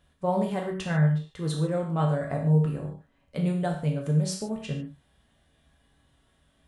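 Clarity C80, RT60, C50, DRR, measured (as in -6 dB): 9.5 dB, not exponential, 5.5 dB, -1.0 dB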